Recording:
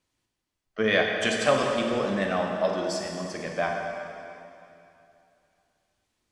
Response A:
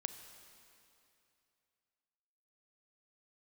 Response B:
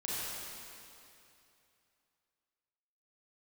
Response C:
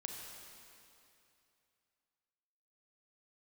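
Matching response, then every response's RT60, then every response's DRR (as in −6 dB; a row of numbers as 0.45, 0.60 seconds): C; 2.7, 2.7, 2.7 seconds; 8.5, −8.5, 1.0 decibels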